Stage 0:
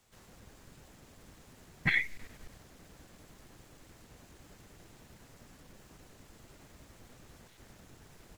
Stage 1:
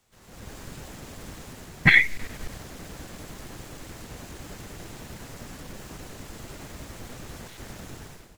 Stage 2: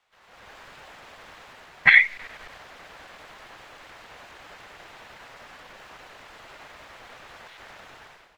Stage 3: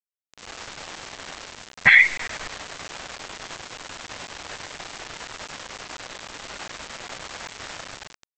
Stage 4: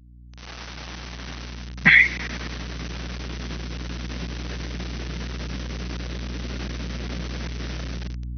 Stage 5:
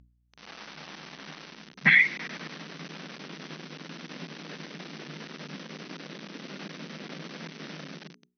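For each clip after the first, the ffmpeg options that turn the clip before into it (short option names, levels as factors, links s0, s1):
-af "dynaudnorm=f=100:g=7:m=5.62"
-filter_complex "[0:a]acrossover=split=590 3900:gain=0.0891 1 0.112[s0][s1][s2];[s0][s1][s2]amix=inputs=3:normalize=0,volume=1.41"
-af "aresample=16000,acrusher=bits=6:mix=0:aa=0.000001,aresample=44100,alimiter=level_in=3.35:limit=0.891:release=50:level=0:latency=1,volume=0.794"
-af "afftfilt=real='re*between(b*sr/4096,140,6200)':imag='im*between(b*sr/4096,140,6200)':win_size=4096:overlap=0.75,aeval=exprs='val(0)+0.00316*(sin(2*PI*60*n/s)+sin(2*PI*2*60*n/s)/2+sin(2*PI*3*60*n/s)/3+sin(2*PI*4*60*n/s)/4+sin(2*PI*5*60*n/s)/5)':c=same,asubboost=boost=12:cutoff=240"
-af "lowpass=5400,bandreject=f=60:t=h:w=6,bandreject=f=120:t=h:w=6,bandreject=f=180:t=h:w=6,bandreject=f=240:t=h:w=6,bandreject=f=300:t=h:w=6,bandreject=f=360:t=h:w=6,bandreject=f=420:t=h:w=6,volume=0.562"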